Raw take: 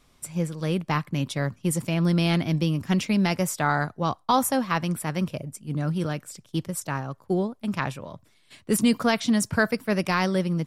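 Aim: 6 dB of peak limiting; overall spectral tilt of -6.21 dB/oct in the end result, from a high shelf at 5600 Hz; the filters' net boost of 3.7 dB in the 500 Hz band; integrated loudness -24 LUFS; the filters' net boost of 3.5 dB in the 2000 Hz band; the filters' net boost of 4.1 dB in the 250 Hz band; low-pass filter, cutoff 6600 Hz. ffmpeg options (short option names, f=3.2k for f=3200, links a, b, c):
-af "lowpass=6.6k,equalizer=f=250:t=o:g=5,equalizer=f=500:t=o:g=3,equalizer=f=2k:t=o:g=5,highshelf=f=5.6k:g=-6,volume=0.5dB,alimiter=limit=-11.5dB:level=0:latency=1"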